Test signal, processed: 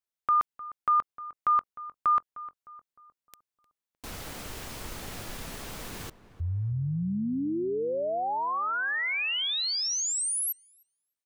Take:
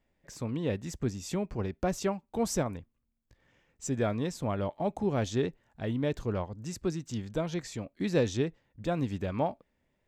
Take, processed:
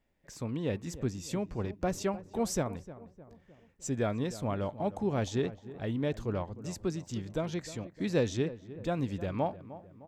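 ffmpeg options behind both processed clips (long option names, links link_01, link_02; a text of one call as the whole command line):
ffmpeg -i in.wav -filter_complex "[0:a]asplit=2[link_01][link_02];[link_02]adelay=306,lowpass=frequency=1500:poles=1,volume=-15dB,asplit=2[link_03][link_04];[link_04]adelay=306,lowpass=frequency=1500:poles=1,volume=0.51,asplit=2[link_05][link_06];[link_06]adelay=306,lowpass=frequency=1500:poles=1,volume=0.51,asplit=2[link_07][link_08];[link_08]adelay=306,lowpass=frequency=1500:poles=1,volume=0.51,asplit=2[link_09][link_10];[link_10]adelay=306,lowpass=frequency=1500:poles=1,volume=0.51[link_11];[link_01][link_03][link_05][link_07][link_09][link_11]amix=inputs=6:normalize=0,volume=-1.5dB" out.wav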